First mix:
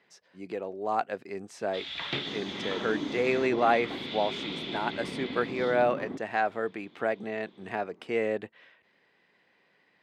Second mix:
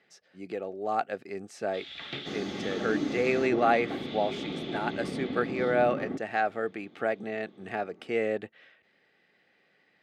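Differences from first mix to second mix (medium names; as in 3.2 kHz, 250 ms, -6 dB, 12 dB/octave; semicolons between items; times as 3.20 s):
first sound -5.5 dB; second sound +3.5 dB; master: add Butterworth band-stop 990 Hz, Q 5.5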